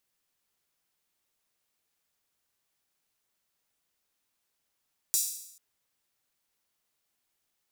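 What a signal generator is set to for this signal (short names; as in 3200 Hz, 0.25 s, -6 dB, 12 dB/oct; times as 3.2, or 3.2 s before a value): open hi-hat length 0.44 s, high-pass 6400 Hz, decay 0.76 s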